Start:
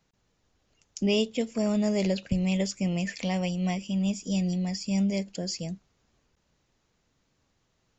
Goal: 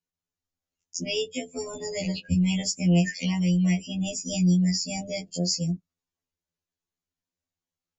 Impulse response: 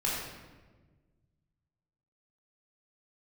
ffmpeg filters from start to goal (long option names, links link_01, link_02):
-filter_complex "[0:a]acrossover=split=390[link_01][link_02];[link_02]acompressor=threshold=-32dB:ratio=3[link_03];[link_01][link_03]amix=inputs=2:normalize=0,aemphasis=mode=production:type=cd,afftdn=noise_reduction=27:noise_floor=-38,acrossover=split=220|810[link_04][link_05][link_06];[link_05]alimiter=level_in=6.5dB:limit=-24dB:level=0:latency=1:release=316,volume=-6.5dB[link_07];[link_04][link_07][link_06]amix=inputs=3:normalize=0,afftfilt=real='re*2*eq(mod(b,4),0)':imag='im*2*eq(mod(b,4),0)':win_size=2048:overlap=0.75,volume=7dB"